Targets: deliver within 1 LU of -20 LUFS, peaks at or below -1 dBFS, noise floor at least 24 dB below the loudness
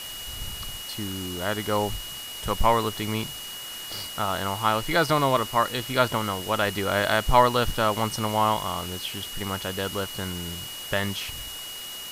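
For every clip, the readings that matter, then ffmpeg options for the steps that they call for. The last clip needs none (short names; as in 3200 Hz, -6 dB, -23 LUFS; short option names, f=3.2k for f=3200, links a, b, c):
steady tone 2900 Hz; tone level -37 dBFS; noise floor -37 dBFS; noise floor target -50 dBFS; loudness -26.0 LUFS; peak -4.5 dBFS; loudness target -20.0 LUFS
-> -af "bandreject=f=2.9k:w=30"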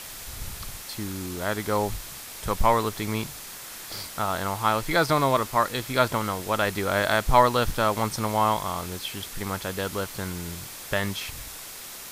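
steady tone none; noise floor -40 dBFS; noise floor target -51 dBFS
-> -af "afftdn=nr=11:nf=-40"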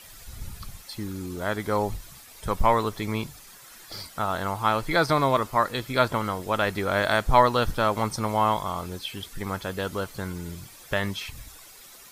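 noise floor -48 dBFS; noise floor target -50 dBFS
-> -af "afftdn=nr=6:nf=-48"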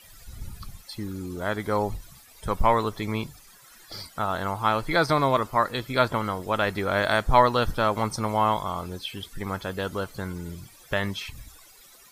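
noise floor -52 dBFS; loudness -26.0 LUFS; peak -5.0 dBFS; loudness target -20.0 LUFS
-> -af "volume=6dB,alimiter=limit=-1dB:level=0:latency=1"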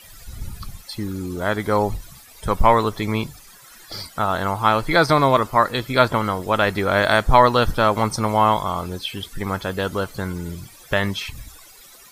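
loudness -20.0 LUFS; peak -1.0 dBFS; noise floor -46 dBFS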